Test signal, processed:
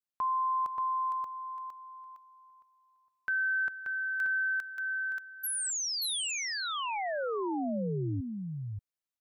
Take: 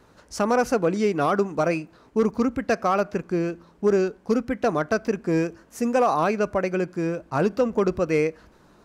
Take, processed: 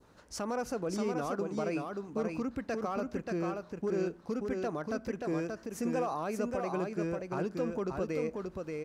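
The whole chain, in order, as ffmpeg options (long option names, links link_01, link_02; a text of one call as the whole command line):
ffmpeg -i in.wav -filter_complex "[0:a]adynamicequalizer=threshold=0.0141:dfrequency=2100:dqfactor=0.93:tfrequency=2100:tqfactor=0.93:attack=5:release=100:ratio=0.375:range=3.5:mode=cutabove:tftype=bell,alimiter=limit=-20.5dB:level=0:latency=1:release=132,asplit=2[link_01][link_02];[link_02]aecho=0:1:581:0.631[link_03];[link_01][link_03]amix=inputs=2:normalize=0,volume=-6dB" out.wav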